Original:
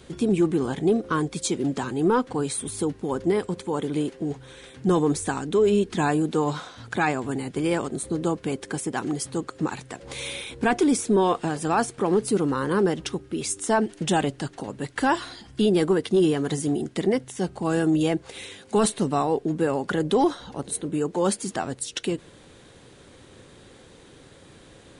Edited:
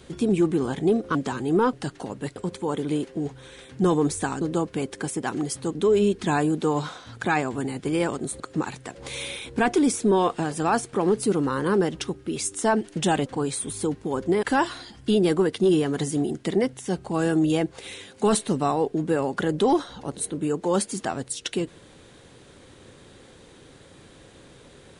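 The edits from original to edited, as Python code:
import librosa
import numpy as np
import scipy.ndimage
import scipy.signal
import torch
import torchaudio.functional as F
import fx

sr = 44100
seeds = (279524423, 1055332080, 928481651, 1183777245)

y = fx.edit(x, sr, fx.cut(start_s=1.15, length_s=0.51),
    fx.swap(start_s=2.24, length_s=1.17, other_s=14.31, other_length_s=0.63),
    fx.move(start_s=8.11, length_s=1.34, to_s=5.46), tone=tone)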